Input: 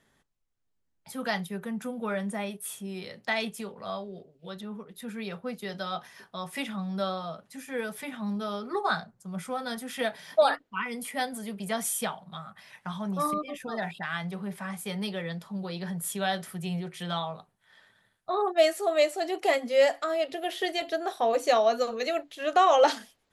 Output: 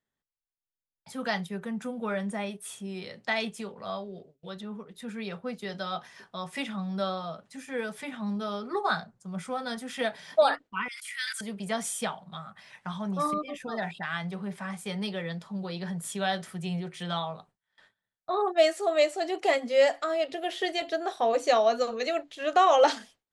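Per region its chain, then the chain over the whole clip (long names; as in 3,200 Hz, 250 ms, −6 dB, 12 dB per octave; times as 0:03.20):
0:10.88–0:11.41: Butterworth high-pass 1,400 Hz 48 dB per octave + level that may fall only so fast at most 20 dB per second
whole clip: low-pass filter 9,300 Hz 24 dB per octave; noise gate with hold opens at −47 dBFS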